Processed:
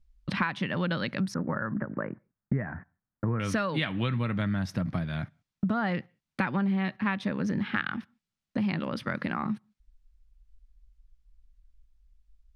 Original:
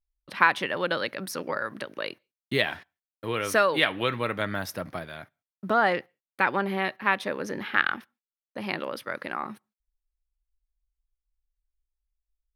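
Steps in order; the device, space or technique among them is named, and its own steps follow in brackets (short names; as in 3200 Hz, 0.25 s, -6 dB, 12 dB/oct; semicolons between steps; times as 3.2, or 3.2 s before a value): jukebox (LPF 6100 Hz 12 dB/oct; resonant low shelf 280 Hz +12.5 dB, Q 1.5; compressor 4:1, threshold -38 dBFS, peak gain reduction 20 dB); 1.34–3.4 steep low-pass 1800 Hz 48 dB/oct; gain +9 dB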